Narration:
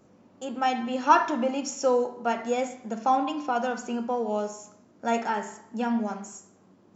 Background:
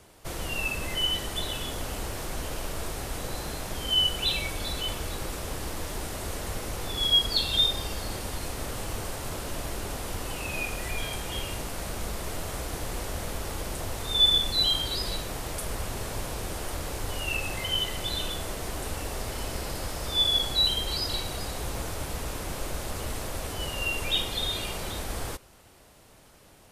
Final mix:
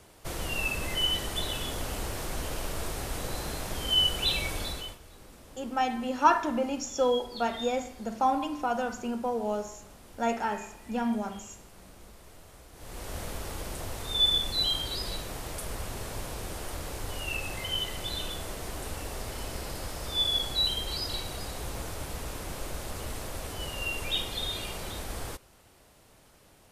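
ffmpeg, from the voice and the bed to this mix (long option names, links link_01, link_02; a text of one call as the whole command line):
ffmpeg -i stem1.wav -i stem2.wav -filter_complex "[0:a]adelay=5150,volume=-2.5dB[link_01];[1:a]volume=14dB,afade=type=out:start_time=4.58:duration=0.4:silence=0.133352,afade=type=in:start_time=12.74:duration=0.43:silence=0.188365[link_02];[link_01][link_02]amix=inputs=2:normalize=0" out.wav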